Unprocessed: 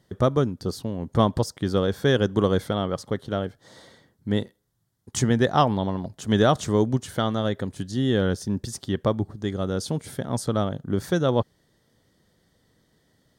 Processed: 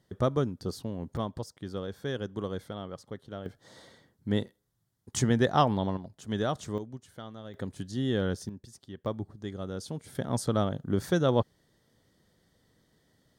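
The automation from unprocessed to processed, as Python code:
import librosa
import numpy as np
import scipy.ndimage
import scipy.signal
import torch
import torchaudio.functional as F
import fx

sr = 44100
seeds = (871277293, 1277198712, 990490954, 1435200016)

y = fx.gain(x, sr, db=fx.steps((0.0, -6.0), (1.17, -13.5), (3.46, -4.0), (5.97, -11.0), (6.78, -19.0), (7.54, -6.5), (8.49, -17.5), (9.06, -10.0), (10.15, -3.0)))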